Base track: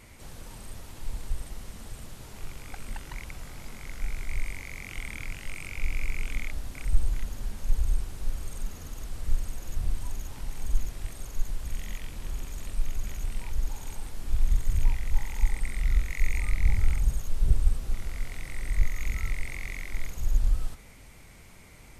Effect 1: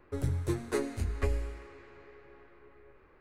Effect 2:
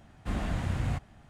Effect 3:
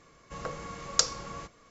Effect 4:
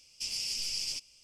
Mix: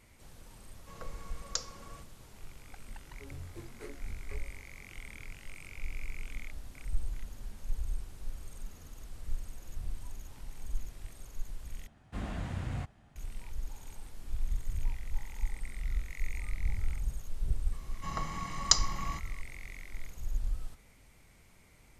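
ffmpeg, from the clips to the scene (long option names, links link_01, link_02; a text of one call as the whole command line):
ffmpeg -i bed.wav -i cue0.wav -i cue1.wav -i cue2.wav -filter_complex "[3:a]asplit=2[link_01][link_02];[0:a]volume=-9.5dB[link_03];[1:a]flanger=delay=20:depth=5.3:speed=2.2[link_04];[link_02]aecho=1:1:1:0.81[link_05];[link_03]asplit=2[link_06][link_07];[link_06]atrim=end=11.874[link_08];[2:a]atrim=end=1.29,asetpts=PTS-STARTPTS,volume=-6dB[link_09];[link_07]atrim=start=13.156[link_10];[link_01]atrim=end=1.7,asetpts=PTS-STARTPTS,volume=-11dB,afade=type=in:duration=0.004:curve=hsin,afade=type=out:start_time=1.696:duration=0.004:curve=hsin,adelay=560[link_11];[link_04]atrim=end=3.2,asetpts=PTS-STARTPTS,volume=-13dB,afade=type=in:duration=0.004:curve=hsin,afade=type=out:start_time=3.196:duration=0.004:curve=hsin,adelay=3080[link_12];[link_05]atrim=end=1.7,asetpts=PTS-STARTPTS,volume=-1.5dB,afade=type=in:duration=0.004:curve=hsin,afade=type=out:start_time=1.696:duration=0.004:curve=hsin,adelay=17720[link_13];[link_08][link_09]acrossfade=duration=0.004:curve1=hsin:curve2=hsin[link_14];[link_14][link_10]acrossfade=duration=0.004:curve1=hsin:curve2=hsin[link_15];[link_15][link_11][link_12][link_13]amix=inputs=4:normalize=0" out.wav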